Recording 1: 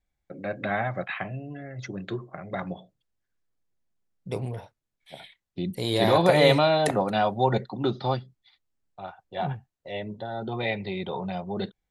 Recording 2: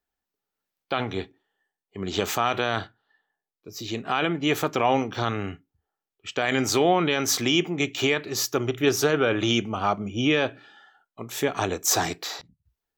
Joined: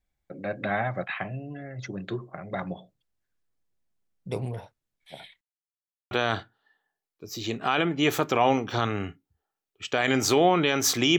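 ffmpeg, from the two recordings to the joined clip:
ffmpeg -i cue0.wav -i cue1.wav -filter_complex "[0:a]apad=whole_dur=11.18,atrim=end=11.18,asplit=2[link_01][link_02];[link_01]atrim=end=5.41,asetpts=PTS-STARTPTS,afade=type=out:start_time=5.406:duration=0.004:curve=hsin[link_03];[link_02]atrim=start=5.41:end=6.11,asetpts=PTS-STARTPTS,volume=0[link_04];[1:a]atrim=start=2.55:end=7.62,asetpts=PTS-STARTPTS,afade=type=in:duration=0.004:curve=hsin[link_05];[link_03][link_04][link_05]concat=n=3:v=0:a=1" out.wav

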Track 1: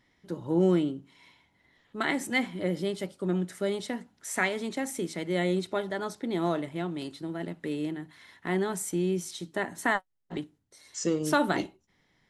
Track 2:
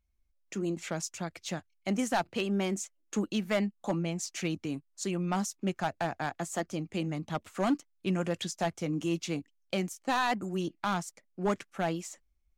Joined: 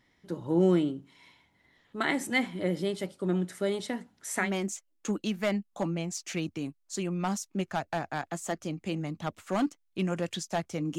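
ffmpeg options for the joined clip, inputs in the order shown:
ffmpeg -i cue0.wav -i cue1.wav -filter_complex "[0:a]apad=whole_dur=10.98,atrim=end=10.98,atrim=end=4.52,asetpts=PTS-STARTPTS[link_01];[1:a]atrim=start=2.46:end=9.06,asetpts=PTS-STARTPTS[link_02];[link_01][link_02]acrossfade=duration=0.14:curve1=tri:curve2=tri" out.wav

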